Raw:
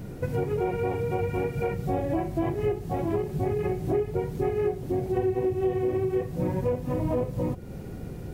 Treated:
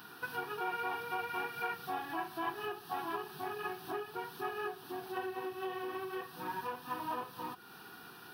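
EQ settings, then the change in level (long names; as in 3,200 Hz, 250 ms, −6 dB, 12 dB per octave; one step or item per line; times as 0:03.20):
high-pass filter 870 Hz 12 dB per octave
parametric band 1,700 Hz +4 dB 0.56 octaves
phaser with its sweep stopped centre 2,100 Hz, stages 6
+5.5 dB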